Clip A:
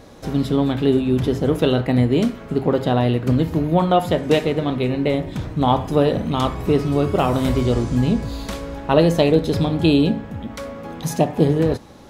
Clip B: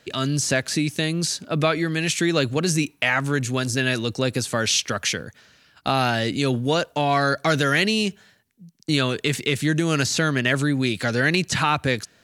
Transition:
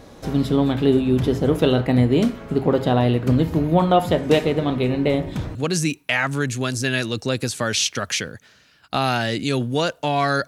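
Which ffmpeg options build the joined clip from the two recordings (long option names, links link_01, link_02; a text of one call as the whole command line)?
ffmpeg -i cue0.wav -i cue1.wav -filter_complex "[0:a]apad=whole_dur=10.47,atrim=end=10.47,atrim=end=5.552[link_01];[1:a]atrim=start=2.478:end=7.4[link_02];[link_01][link_02]acrossfade=duration=0.004:curve1=hsin:curve2=hsin" out.wav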